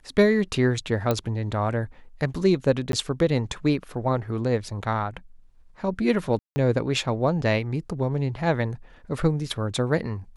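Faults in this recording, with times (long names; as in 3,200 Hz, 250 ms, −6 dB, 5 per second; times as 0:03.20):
0:01.11: click −10 dBFS
0:02.92–0:02.93: drop-out 12 ms
0:06.39–0:06.56: drop-out 170 ms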